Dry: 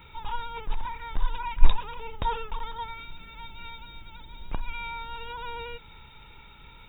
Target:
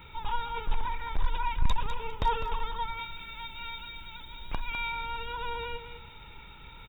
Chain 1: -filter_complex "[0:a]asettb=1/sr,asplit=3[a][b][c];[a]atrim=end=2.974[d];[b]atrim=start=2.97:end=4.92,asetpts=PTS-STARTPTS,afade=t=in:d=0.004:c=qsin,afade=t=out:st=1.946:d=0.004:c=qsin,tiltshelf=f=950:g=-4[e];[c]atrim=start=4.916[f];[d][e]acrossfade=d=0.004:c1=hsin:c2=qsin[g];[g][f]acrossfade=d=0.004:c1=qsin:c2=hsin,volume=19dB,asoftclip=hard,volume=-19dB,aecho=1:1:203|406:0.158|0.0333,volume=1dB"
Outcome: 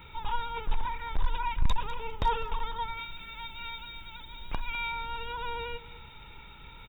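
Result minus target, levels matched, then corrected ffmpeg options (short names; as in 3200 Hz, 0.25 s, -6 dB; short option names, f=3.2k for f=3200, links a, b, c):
echo-to-direct -6.5 dB
-filter_complex "[0:a]asettb=1/sr,asplit=3[a][b][c];[a]atrim=end=2.974[d];[b]atrim=start=2.97:end=4.92,asetpts=PTS-STARTPTS,afade=t=in:d=0.004:c=qsin,afade=t=out:st=1.946:d=0.004:c=qsin,tiltshelf=f=950:g=-4[e];[c]atrim=start=4.916[f];[d][e]acrossfade=d=0.004:c1=hsin:c2=qsin[g];[g][f]acrossfade=d=0.004:c1=qsin:c2=hsin,volume=19dB,asoftclip=hard,volume=-19dB,aecho=1:1:203|406|609:0.335|0.0703|0.0148,volume=1dB"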